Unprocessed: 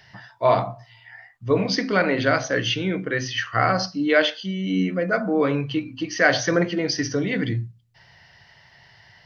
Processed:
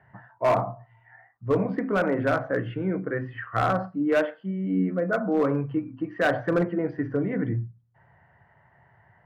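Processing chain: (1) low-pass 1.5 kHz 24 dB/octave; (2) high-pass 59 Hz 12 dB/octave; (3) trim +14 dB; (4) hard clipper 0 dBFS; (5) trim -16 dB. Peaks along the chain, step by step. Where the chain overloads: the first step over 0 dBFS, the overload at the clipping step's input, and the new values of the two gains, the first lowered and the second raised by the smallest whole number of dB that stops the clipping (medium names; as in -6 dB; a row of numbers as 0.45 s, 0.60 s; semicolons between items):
-6.5 dBFS, -6.5 dBFS, +7.5 dBFS, 0.0 dBFS, -16.0 dBFS; step 3, 7.5 dB; step 3 +6 dB, step 5 -8 dB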